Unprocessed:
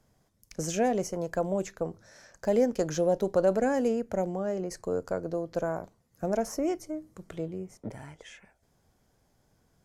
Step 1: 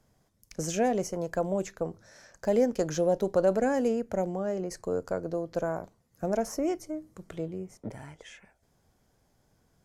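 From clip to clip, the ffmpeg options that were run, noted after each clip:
ffmpeg -i in.wav -af anull out.wav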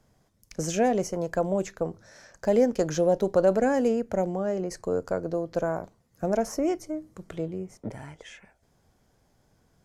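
ffmpeg -i in.wav -af "highshelf=frequency=9700:gain=-5,volume=3dB" out.wav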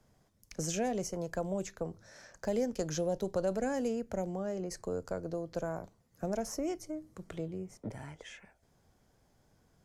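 ffmpeg -i in.wav -filter_complex "[0:a]acrossover=split=150|3000[link_01][link_02][link_03];[link_02]acompressor=threshold=-41dB:ratio=1.5[link_04];[link_01][link_04][link_03]amix=inputs=3:normalize=0,volume=-3dB" out.wav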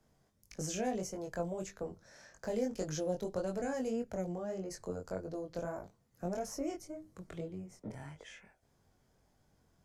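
ffmpeg -i in.wav -af "flanger=delay=20:depth=3.6:speed=1.7" out.wav

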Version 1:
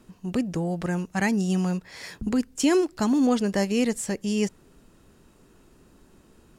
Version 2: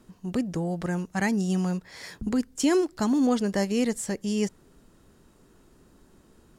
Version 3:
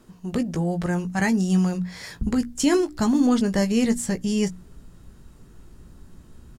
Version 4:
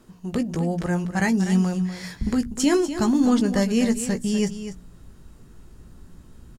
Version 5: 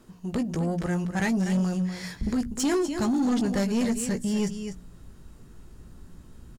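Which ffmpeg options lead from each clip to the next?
ffmpeg -i in.wav -af "equalizer=frequency=2600:width=5.1:gain=-4.5,volume=-1.5dB" out.wav
ffmpeg -i in.wav -filter_complex "[0:a]asubboost=boost=4:cutoff=190,bandreject=frequency=60:width_type=h:width=6,bandreject=frequency=120:width_type=h:width=6,bandreject=frequency=180:width_type=h:width=6,bandreject=frequency=240:width_type=h:width=6,bandreject=frequency=300:width_type=h:width=6,asplit=2[link_01][link_02];[link_02]adelay=17,volume=-8dB[link_03];[link_01][link_03]amix=inputs=2:normalize=0,volume=3dB" out.wav
ffmpeg -i in.wav -af "aecho=1:1:246:0.282" out.wav
ffmpeg -i in.wav -af "asoftclip=type=tanh:threshold=-19dB,volume=-1dB" out.wav

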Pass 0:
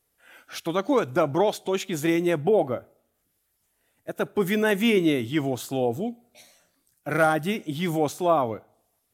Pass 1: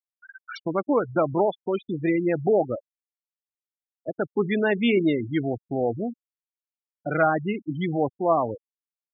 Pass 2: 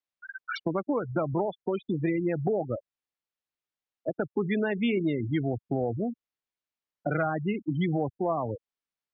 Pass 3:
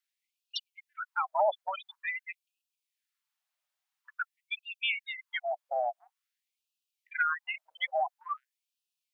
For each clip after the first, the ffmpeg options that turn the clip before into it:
ffmpeg -i in.wav -af "acompressor=mode=upward:threshold=-24dB:ratio=2.5,afftfilt=real='re*gte(hypot(re,im),0.0891)':imag='im*gte(hypot(re,im),0.0891)':win_size=1024:overlap=0.75" out.wav
ffmpeg -i in.wav -filter_complex "[0:a]lowpass=4400,acrossover=split=130[link_01][link_02];[link_02]acompressor=threshold=-32dB:ratio=4[link_03];[link_01][link_03]amix=inputs=2:normalize=0,volume=4.5dB" out.wav
ffmpeg -i in.wav -af "afftfilt=real='re*gte(b*sr/1024,530*pow(2500/530,0.5+0.5*sin(2*PI*0.48*pts/sr)))':imag='im*gte(b*sr/1024,530*pow(2500/530,0.5+0.5*sin(2*PI*0.48*pts/sr)))':win_size=1024:overlap=0.75,volume=6.5dB" out.wav

